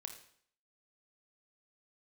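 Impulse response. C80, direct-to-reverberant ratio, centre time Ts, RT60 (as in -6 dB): 11.0 dB, 4.5 dB, 17 ms, 0.60 s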